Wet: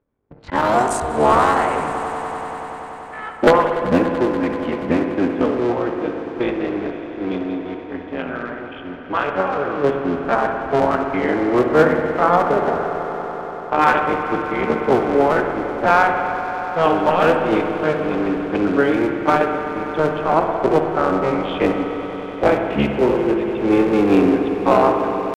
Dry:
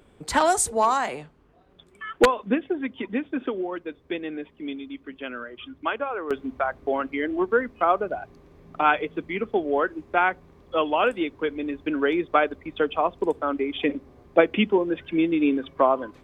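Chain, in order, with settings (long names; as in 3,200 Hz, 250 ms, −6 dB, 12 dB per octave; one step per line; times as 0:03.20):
sub-harmonics by changed cycles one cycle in 3, muted
low-pass filter 3,900 Hz 6 dB per octave
hum removal 334.3 Hz, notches 10
noise gate −45 dBFS, range −18 dB
low-pass that shuts in the quiet parts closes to 2,300 Hz, open at −20.5 dBFS
high-shelf EQ 2,300 Hz −8 dB
automatic gain control gain up to 8.5 dB
gain into a clipping stage and back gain 6 dB
tempo change 0.64×
echo that builds up and dies away 96 ms, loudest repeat 5, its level −17.5 dB
on a send at −5 dB: convolution reverb RT60 1.9 s, pre-delay 58 ms
on the sum: level +1.5 dB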